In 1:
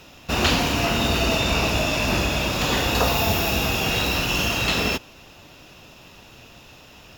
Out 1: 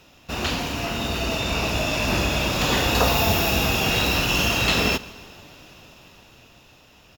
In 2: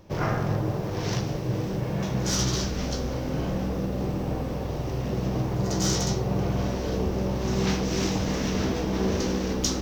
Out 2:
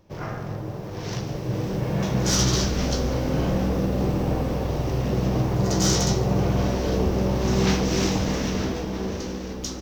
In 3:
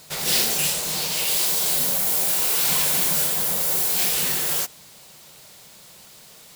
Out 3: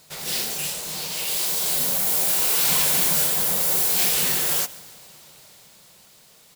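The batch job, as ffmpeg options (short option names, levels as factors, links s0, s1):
-filter_complex "[0:a]dynaudnorm=f=180:g=17:m=4.47,asplit=2[s0][s1];[s1]aecho=0:1:143|286|429|572:0.0891|0.049|0.027|0.0148[s2];[s0][s2]amix=inputs=2:normalize=0,volume=0.501"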